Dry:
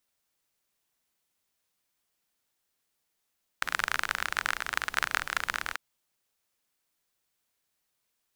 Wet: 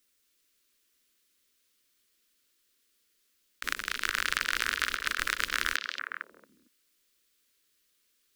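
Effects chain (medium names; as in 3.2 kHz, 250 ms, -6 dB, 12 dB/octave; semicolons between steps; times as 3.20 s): compressor with a negative ratio -33 dBFS, ratio -0.5; static phaser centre 320 Hz, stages 4; repeats whose band climbs or falls 227 ms, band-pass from 3.7 kHz, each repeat -1.4 oct, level -1.5 dB; trim +4.5 dB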